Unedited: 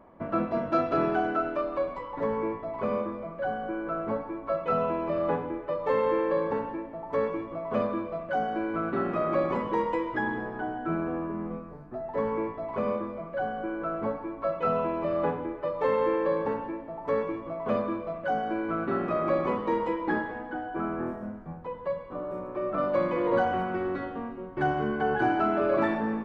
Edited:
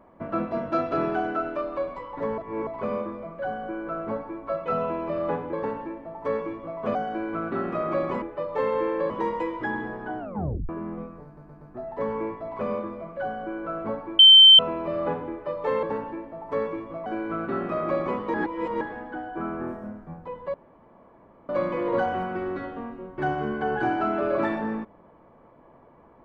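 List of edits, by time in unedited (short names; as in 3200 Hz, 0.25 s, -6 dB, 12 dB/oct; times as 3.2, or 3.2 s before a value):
2.38–2.67 reverse
5.53–6.41 move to 9.63
7.83–8.36 cut
10.72 tape stop 0.50 s
11.78 stutter 0.12 s, 4 plays
14.36–14.76 bleep 3100 Hz -7.5 dBFS
16–16.39 cut
17.62–18.45 cut
19.73–20.2 reverse
21.93–22.88 room tone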